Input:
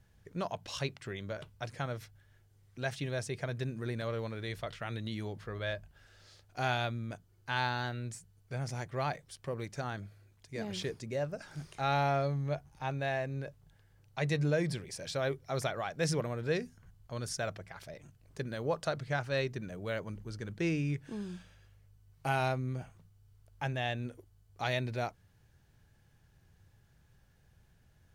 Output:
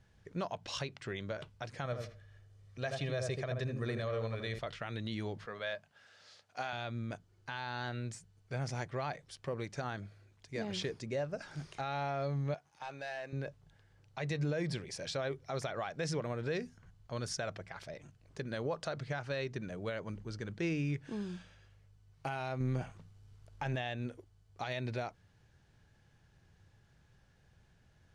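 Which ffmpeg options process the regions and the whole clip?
-filter_complex "[0:a]asettb=1/sr,asplit=3[s0][s1][s2];[s0]atrim=end=1.844[s3];[s1]atrim=start=1.84:end=4.59,asetpts=PTS-STARTPTS,afade=t=in:d=0.004:c=qsin,afade=t=out:st=2.746:d=0.004:c=qsin,aecho=1:1:1.7:0.43,atrim=end_sample=121275,asplit=2[s4][s5];[s5]adelay=80,lowpass=f=930:p=1,volume=0.668,asplit=2[s6][s7];[s7]adelay=80,lowpass=f=930:p=1,volume=0.26,asplit=2[s8][s9];[s9]adelay=80,lowpass=f=930:p=1,volume=0.26,asplit=2[s10][s11];[s11]adelay=80,lowpass=f=930:p=1,volume=0.26[s12];[s4][s6][s8][s10][s12]amix=inputs=5:normalize=0,atrim=end_sample=121275[s13];[s2]atrim=start=4.586[s14];[s3][s13]acrossfade=d=0.004:c1=hsin:c2=qsin[s15];[s15][s14]acrossfade=d=0.004:c1=qsin:c2=hsin,asettb=1/sr,asplit=3[s16][s17][s18];[s16]atrim=end=5.464[s19];[s17]atrim=start=5.46:end=6.73,asetpts=PTS-STARTPTS,afade=t=in:d=0.004:c=qsin,afade=t=out:st=1.266:d=0.004:c=qsin,highpass=230,equalizer=f=340:w=3.5:g=-13[s20];[s18]atrim=start=6.726[s21];[s19][s20]acrossfade=d=0.004:c1=hsin:c2=qsin[s22];[s22][s21]acrossfade=d=0.004:c1=qsin:c2=hsin,asettb=1/sr,asplit=3[s23][s24][s25];[s23]atrim=end=12.544[s26];[s24]atrim=start=12.54:end=13.33,asetpts=PTS-STARTPTS,afade=t=in:d=0.004:c=qsin,afade=t=out:st=0.786:d=0.004:c=qsin,highpass=f=780:p=1,acompressor=threshold=0.01:ratio=2:attack=3.2:release=140:knee=1:detection=peak,asoftclip=type=hard:threshold=0.0133[s27];[s25]atrim=start=13.326[s28];[s26][s27]acrossfade=d=0.004:c1=hsin:c2=qsin[s29];[s29][s28]acrossfade=d=0.004:c1=qsin:c2=hsin,asettb=1/sr,asplit=3[s30][s31][s32];[s30]atrim=end=22.604[s33];[s31]atrim=start=22.6:end=23.76,asetpts=PTS-STARTPTS,afade=t=in:d=0.004:c=qsin,afade=t=out:st=1.156:d=0.004:c=qsin,aeval=exprs='if(lt(val(0),0),0.708*val(0),val(0))':c=same,acontrast=74[s34];[s32]atrim=start=23.756[s35];[s33][s34]acrossfade=d=0.004:c1=hsin:c2=qsin[s36];[s36][s35]acrossfade=d=0.004:c1=qsin:c2=hsin,lowpass=6900,lowshelf=f=120:g=-4.5,alimiter=level_in=1.68:limit=0.0631:level=0:latency=1:release=121,volume=0.596,volume=1.19"

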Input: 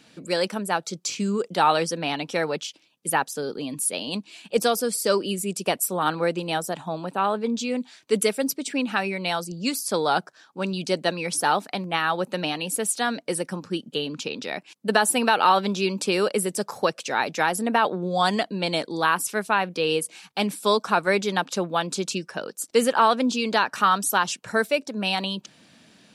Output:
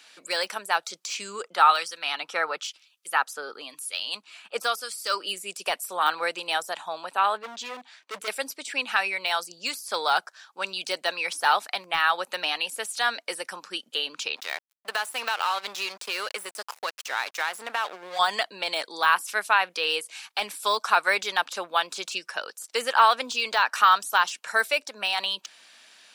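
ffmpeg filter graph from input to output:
-filter_complex "[0:a]asettb=1/sr,asplit=3[s0][s1][s2];[s0]atrim=end=1.434[s3];[s1]atrim=start=1.43:end=5.27,asetpts=PTS-STARTPTS,afade=t=in:d=0.004:c=qsin,afade=t=out:st=3.836:d=0.004:c=qsin,equalizer=f=1300:w=4.8:g=8.5,acrossover=split=2100[s4][s5];[s4]aeval=exprs='val(0)*(1-0.7/2+0.7/2*cos(2*PI*1*n/s))':c=same[s6];[s5]aeval=exprs='val(0)*(1-0.7/2-0.7/2*cos(2*PI*1*n/s))':c=same[s7];[s6][s7]amix=inputs=2:normalize=0[s8];[s2]atrim=start=5.266[s9];[s3][s8]acrossfade=d=0.004:c1=hsin:c2=qsin[s10];[s10][s9]acrossfade=d=0.004:c1=qsin:c2=hsin,asettb=1/sr,asplit=3[s11][s12][s13];[s11]atrim=end=7.374[s14];[s12]atrim=start=7.37:end=8.28,asetpts=PTS-STARTPTS,afade=t=in:d=0.004:c=qsin,afade=t=out:st=0.906:d=0.004:c=qsin,lowpass=f=1900:p=1,asoftclip=type=hard:threshold=0.0422[s15];[s13]atrim=start=8.276[s16];[s14][s15]acrossfade=d=0.004:c1=hsin:c2=qsin[s17];[s17][s16]acrossfade=d=0.004:c1=qsin:c2=hsin,asettb=1/sr,asplit=3[s18][s19][s20];[s18]atrim=end=14.364[s21];[s19]atrim=start=14.36:end=18.19,asetpts=PTS-STARTPTS,afade=t=in:d=0.004:c=qsin,afade=t=out:st=3.826:d=0.004:c=qsin,equalizer=f=82:w=0.98:g=-11.5,acompressor=threshold=0.0708:ratio=3:attack=3.2:release=140:knee=1:detection=peak,aeval=exprs='sgn(val(0))*max(abs(val(0))-0.0141,0)':c=same[s22];[s20]atrim=start=18.186[s23];[s21][s22]acrossfade=d=0.004:c1=hsin:c2=qsin[s24];[s24][s23]acrossfade=d=0.004:c1=qsin:c2=hsin,highpass=1000,deesser=0.75,volume=1.68"

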